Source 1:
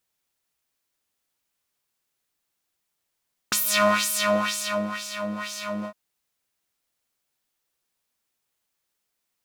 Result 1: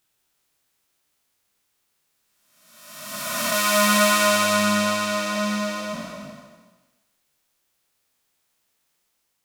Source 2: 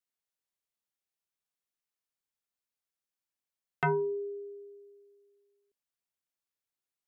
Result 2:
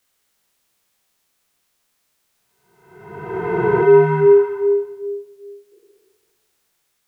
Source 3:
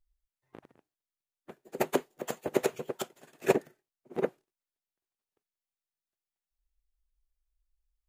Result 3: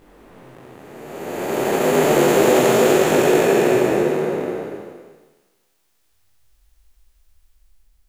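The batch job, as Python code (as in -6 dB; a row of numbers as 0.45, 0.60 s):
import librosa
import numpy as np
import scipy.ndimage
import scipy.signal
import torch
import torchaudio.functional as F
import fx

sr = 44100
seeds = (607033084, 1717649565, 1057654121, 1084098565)

y = fx.spec_blur(x, sr, span_ms=883.0)
y = fx.detune_double(y, sr, cents=11)
y = librosa.util.normalize(y) * 10.0 ** (-3 / 20.0)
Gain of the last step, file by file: +13.0, +29.5, +31.0 dB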